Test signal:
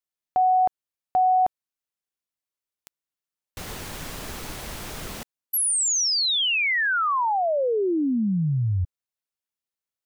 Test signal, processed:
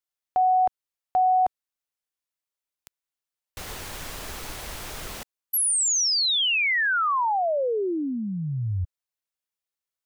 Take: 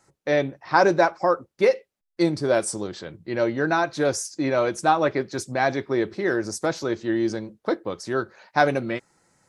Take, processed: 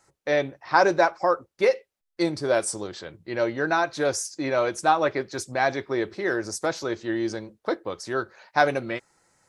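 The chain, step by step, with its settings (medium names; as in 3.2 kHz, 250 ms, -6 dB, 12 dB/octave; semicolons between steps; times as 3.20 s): peaking EQ 190 Hz -6.5 dB 1.8 oct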